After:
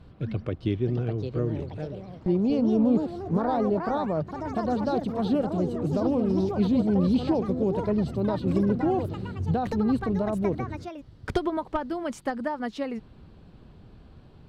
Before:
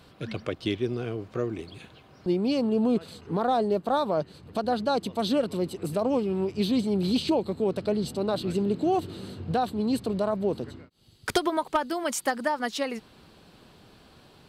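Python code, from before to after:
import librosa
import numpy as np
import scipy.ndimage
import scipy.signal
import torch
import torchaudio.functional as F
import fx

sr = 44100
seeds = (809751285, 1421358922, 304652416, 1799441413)

y = fx.echo_pitch(x, sr, ms=703, semitones=4, count=3, db_per_echo=-6.0)
y = fx.riaa(y, sr, side='playback')
y = F.gain(torch.from_numpy(y), -4.5).numpy()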